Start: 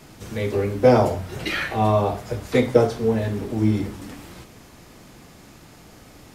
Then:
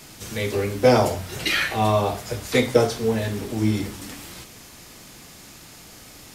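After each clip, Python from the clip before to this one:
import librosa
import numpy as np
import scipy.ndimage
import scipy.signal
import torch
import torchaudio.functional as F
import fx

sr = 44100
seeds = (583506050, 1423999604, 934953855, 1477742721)

y = fx.high_shelf(x, sr, hz=2100.0, db=11.5)
y = F.gain(torch.from_numpy(y), -2.0).numpy()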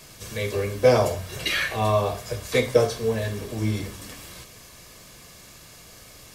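y = x + 0.43 * np.pad(x, (int(1.8 * sr / 1000.0), 0))[:len(x)]
y = F.gain(torch.from_numpy(y), -3.0).numpy()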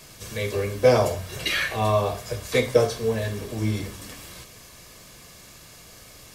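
y = x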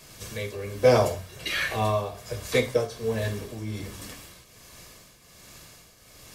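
y = fx.tremolo_shape(x, sr, shape='triangle', hz=1.3, depth_pct=70)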